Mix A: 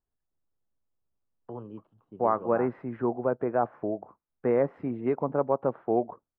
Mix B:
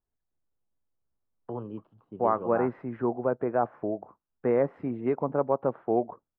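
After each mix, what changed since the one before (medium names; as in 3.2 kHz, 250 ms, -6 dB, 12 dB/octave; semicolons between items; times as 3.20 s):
first voice +4.0 dB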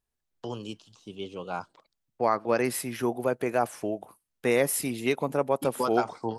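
first voice: entry -1.05 s; master: remove low-pass 1.4 kHz 24 dB/octave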